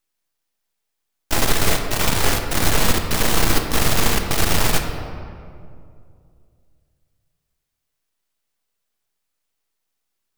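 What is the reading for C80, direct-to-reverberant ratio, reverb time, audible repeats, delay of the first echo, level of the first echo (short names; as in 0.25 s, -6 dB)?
6.5 dB, 4.0 dB, 2.4 s, none, none, none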